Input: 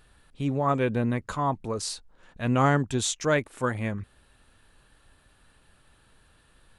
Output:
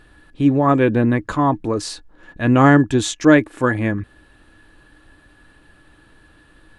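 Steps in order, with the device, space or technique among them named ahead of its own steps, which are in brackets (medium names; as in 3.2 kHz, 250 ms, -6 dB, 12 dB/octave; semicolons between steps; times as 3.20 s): inside a helmet (treble shelf 5.3 kHz -9 dB; small resonant body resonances 310/1700 Hz, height 14 dB, ringing for 85 ms); trim +8 dB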